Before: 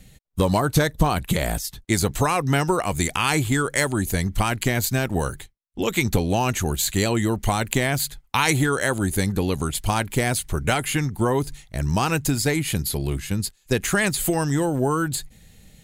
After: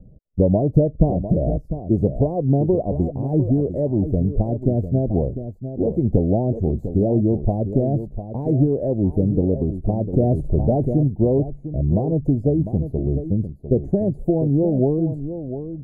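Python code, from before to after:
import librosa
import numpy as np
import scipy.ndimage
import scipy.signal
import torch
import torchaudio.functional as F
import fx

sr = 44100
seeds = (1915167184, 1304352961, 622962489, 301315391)

y = scipy.signal.sosfilt(scipy.signal.ellip(4, 1.0, 50, 640.0, 'lowpass', fs=sr, output='sos'), x)
y = y + 10.0 ** (-10.5 / 20.0) * np.pad(y, (int(700 * sr / 1000.0), 0))[:len(y)]
y = fx.env_flatten(y, sr, amount_pct=50, at=(10.13, 11.08))
y = y * 10.0 ** (4.5 / 20.0)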